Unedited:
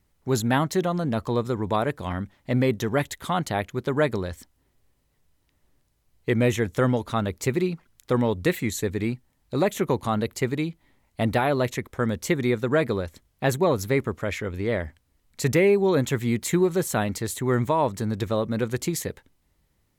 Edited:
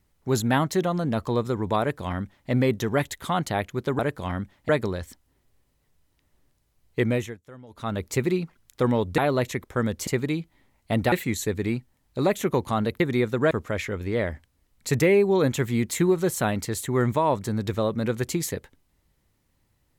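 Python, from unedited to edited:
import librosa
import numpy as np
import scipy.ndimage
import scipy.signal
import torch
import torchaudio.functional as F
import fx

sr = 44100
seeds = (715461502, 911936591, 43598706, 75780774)

y = fx.edit(x, sr, fx.duplicate(start_s=1.8, length_s=0.7, to_s=3.99),
    fx.fade_down_up(start_s=6.31, length_s=1.03, db=-23.5, fade_s=0.37),
    fx.swap(start_s=8.48, length_s=1.88, other_s=11.41, other_length_s=0.89),
    fx.cut(start_s=12.81, length_s=1.23), tone=tone)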